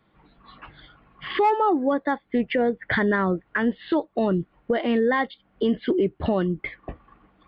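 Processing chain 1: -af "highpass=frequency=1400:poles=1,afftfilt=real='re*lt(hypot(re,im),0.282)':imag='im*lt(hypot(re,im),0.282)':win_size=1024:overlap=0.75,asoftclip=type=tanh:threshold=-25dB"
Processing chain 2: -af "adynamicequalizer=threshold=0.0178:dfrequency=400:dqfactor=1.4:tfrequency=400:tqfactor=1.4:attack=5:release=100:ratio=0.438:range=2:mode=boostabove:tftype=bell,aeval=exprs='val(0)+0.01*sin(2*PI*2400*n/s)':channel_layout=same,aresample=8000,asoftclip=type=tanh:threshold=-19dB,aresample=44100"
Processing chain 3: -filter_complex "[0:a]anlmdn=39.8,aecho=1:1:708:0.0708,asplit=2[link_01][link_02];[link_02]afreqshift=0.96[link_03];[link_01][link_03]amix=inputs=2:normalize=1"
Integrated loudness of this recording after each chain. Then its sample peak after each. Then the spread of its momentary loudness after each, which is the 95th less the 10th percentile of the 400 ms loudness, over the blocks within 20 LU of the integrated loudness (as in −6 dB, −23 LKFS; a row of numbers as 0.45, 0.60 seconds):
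−36.5, −26.0, −27.0 LKFS; −25.0, −17.5, −12.5 dBFS; 16, 16, 10 LU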